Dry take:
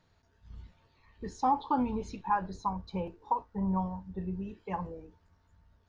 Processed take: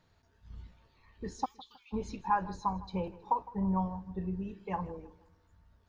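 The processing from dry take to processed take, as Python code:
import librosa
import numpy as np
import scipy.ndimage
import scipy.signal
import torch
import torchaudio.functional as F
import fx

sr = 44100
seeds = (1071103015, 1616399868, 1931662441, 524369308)

y = fx.cheby2_highpass(x, sr, hz=590.0, order=4, stop_db=70, at=(1.44, 1.92), fade=0.02)
y = fx.echo_feedback(y, sr, ms=159, feedback_pct=39, wet_db=-19.0)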